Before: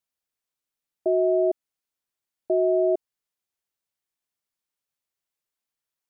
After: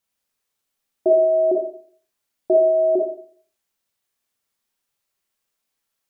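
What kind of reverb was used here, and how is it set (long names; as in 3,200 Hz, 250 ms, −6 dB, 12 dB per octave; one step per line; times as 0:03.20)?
four-comb reverb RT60 0.52 s, combs from 28 ms, DRR −1 dB
level +5.5 dB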